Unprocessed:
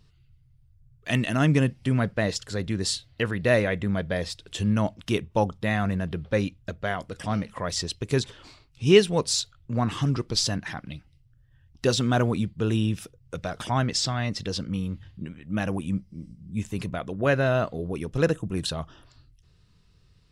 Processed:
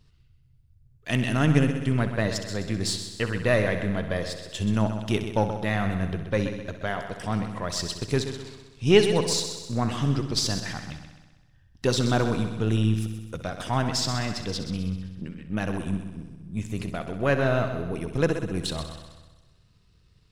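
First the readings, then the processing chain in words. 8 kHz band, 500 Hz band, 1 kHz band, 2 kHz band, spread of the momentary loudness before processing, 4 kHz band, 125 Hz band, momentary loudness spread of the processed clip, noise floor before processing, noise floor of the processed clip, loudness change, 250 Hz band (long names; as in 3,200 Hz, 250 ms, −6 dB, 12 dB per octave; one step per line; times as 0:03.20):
−0.5 dB, −0.5 dB, 0.0 dB, −0.5 dB, 12 LU, −0.5 dB, +0.5 dB, 12 LU, −60 dBFS, −60 dBFS, 0.0 dB, 0.0 dB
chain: gain on one half-wave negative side −3 dB
echo machine with several playback heads 64 ms, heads first and second, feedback 57%, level −12 dB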